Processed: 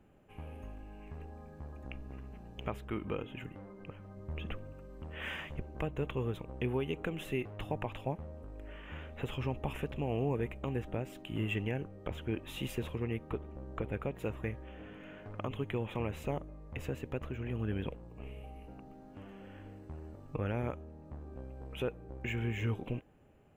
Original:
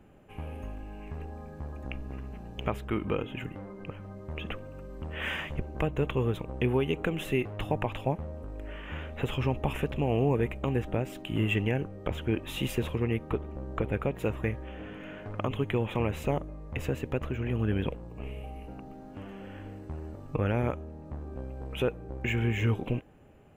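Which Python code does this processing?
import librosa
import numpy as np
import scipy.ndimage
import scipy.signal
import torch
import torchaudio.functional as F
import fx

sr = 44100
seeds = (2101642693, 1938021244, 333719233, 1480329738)

y = fx.low_shelf(x, sr, hz=180.0, db=7.0, at=(4.17, 4.73))
y = F.gain(torch.from_numpy(y), -7.0).numpy()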